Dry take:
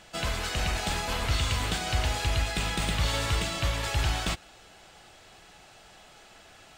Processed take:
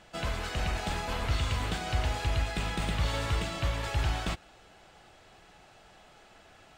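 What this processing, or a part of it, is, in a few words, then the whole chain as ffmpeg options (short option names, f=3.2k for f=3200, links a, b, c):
behind a face mask: -af "highshelf=f=2.9k:g=-8,volume=-1.5dB"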